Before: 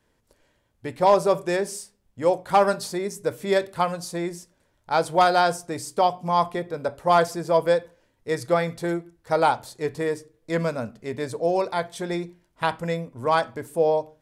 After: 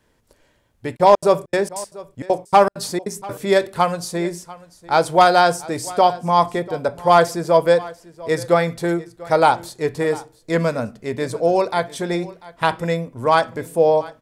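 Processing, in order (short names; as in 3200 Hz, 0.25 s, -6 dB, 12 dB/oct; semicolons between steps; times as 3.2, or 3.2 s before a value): 0.95–3.38 step gate "xx.xx.xxx." 196 bpm -60 dB; echo 0.692 s -20 dB; gain +5.5 dB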